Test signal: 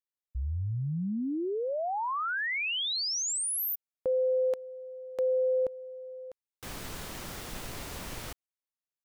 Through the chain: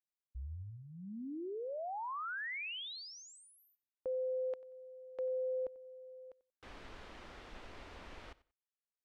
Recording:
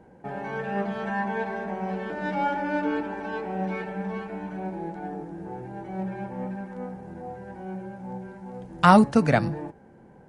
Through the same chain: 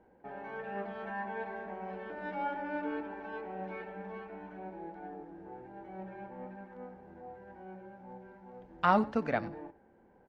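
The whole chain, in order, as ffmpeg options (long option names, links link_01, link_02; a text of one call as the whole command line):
ffmpeg -i in.wav -filter_complex "[0:a]lowpass=3100,equalizer=frequency=140:width_type=o:width=0.9:gain=-12,asplit=2[link_01][link_02];[link_02]aecho=0:1:92|184:0.1|0.02[link_03];[link_01][link_03]amix=inputs=2:normalize=0,volume=-9dB" out.wav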